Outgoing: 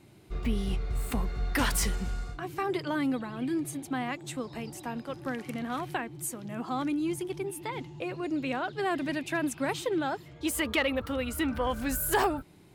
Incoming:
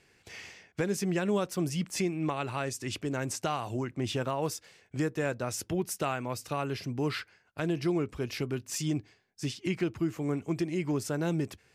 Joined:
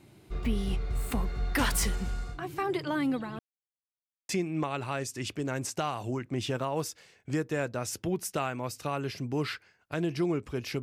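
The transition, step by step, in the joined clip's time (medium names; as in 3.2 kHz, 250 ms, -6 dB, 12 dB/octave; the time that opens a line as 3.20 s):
outgoing
3.39–4.29 s: mute
4.29 s: go over to incoming from 1.95 s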